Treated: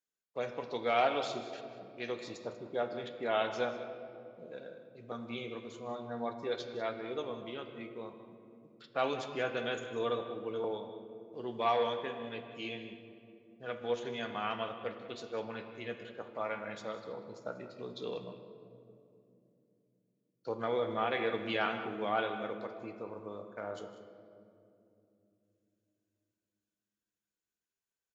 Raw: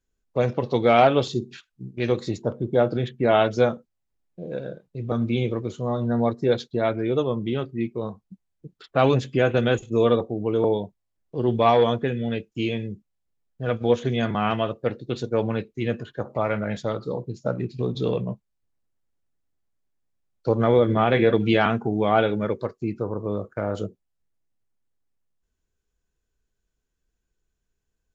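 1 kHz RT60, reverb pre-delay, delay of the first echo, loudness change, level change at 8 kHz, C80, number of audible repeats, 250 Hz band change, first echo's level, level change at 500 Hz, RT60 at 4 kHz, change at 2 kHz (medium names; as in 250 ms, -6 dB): 2.3 s, 4 ms, 156 ms, -13.5 dB, no reading, 8.5 dB, 2, -17.5 dB, -17.0 dB, -13.5 dB, 1.5 s, -9.0 dB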